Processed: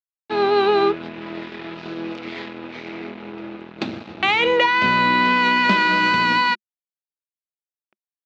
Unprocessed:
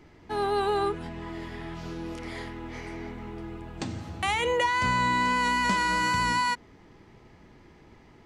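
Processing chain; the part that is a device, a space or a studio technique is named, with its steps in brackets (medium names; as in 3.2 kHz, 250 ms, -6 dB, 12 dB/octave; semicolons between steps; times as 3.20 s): blown loudspeaker (crossover distortion -41 dBFS; cabinet simulation 180–4700 Hz, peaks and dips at 210 Hz +7 dB, 360 Hz +8 dB, 610 Hz +4 dB, 1.4 kHz +4 dB, 2.5 kHz +8 dB, 3.8 kHz +6 dB); trim +7 dB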